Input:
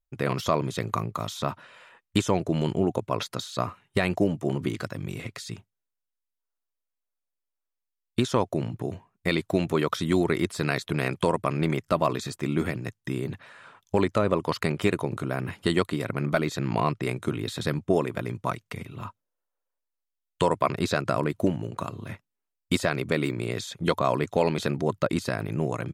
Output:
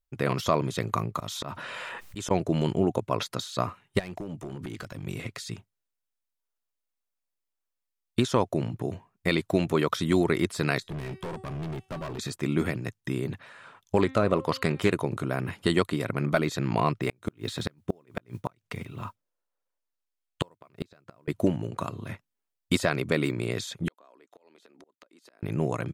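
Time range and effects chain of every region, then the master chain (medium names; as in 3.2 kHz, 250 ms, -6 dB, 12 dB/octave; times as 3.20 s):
1.16–2.31 s: slow attack 368 ms + level flattener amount 70%
3.99–5.06 s: compression 5:1, threshold -32 dBFS + overload inside the chain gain 30 dB
10.80–12.19 s: bass shelf 420 Hz +9.5 dB + feedback comb 380 Hz, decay 0.52 s, mix 70% + hard clipper -32 dBFS
13.98–14.91 s: de-hum 264.7 Hz, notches 18 + loudspeaker Doppler distortion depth 0.16 ms
16.96–21.28 s: treble shelf 9.7 kHz -6.5 dB + modulation noise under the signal 31 dB + inverted gate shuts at -15 dBFS, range -34 dB
23.88–25.43 s: high-pass 270 Hz 24 dB/octave + inverted gate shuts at -19 dBFS, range -28 dB + compression 16:1, threshold -50 dBFS
whole clip: none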